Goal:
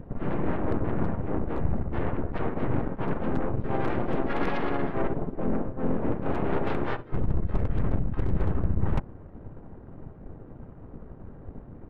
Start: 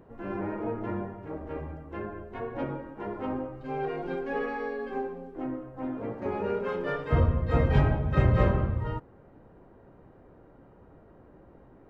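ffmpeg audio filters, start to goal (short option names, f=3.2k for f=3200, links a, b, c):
-filter_complex "[0:a]bass=f=250:g=9,treble=f=4k:g=-9,areverse,acompressor=threshold=-31dB:ratio=10,areverse,aeval=exprs='0.0562*(cos(1*acos(clip(val(0)/0.0562,-1,1)))-cos(1*PI/2))+0.000562*(cos(3*acos(clip(val(0)/0.0562,-1,1)))-cos(3*PI/2))+0.0251*(cos(4*acos(clip(val(0)/0.0562,-1,1)))-cos(4*PI/2))+0.000891*(cos(8*acos(clip(val(0)/0.0562,-1,1)))-cos(8*PI/2))':c=same,asplit=3[a][b][c];[b]asetrate=29433,aresample=44100,atempo=1.49831,volume=-1dB[d];[c]asetrate=37084,aresample=44100,atempo=1.18921,volume=0dB[e];[a][d][e]amix=inputs=3:normalize=0"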